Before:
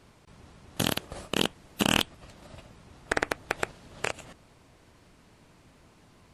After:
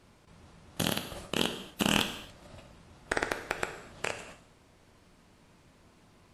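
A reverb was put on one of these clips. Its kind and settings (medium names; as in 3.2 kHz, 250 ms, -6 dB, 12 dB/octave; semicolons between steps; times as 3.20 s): gated-style reverb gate 300 ms falling, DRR 6 dB; trim -3.5 dB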